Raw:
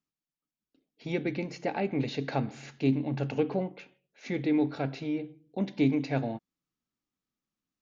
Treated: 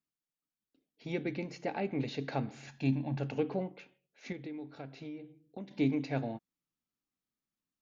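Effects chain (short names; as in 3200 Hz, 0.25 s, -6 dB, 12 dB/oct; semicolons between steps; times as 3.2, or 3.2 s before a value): 2.67–3.17 comb 1.2 ms, depth 62%; 4.32–5.71 compressor 5:1, threshold -37 dBFS, peak gain reduction 13.5 dB; gain -4.5 dB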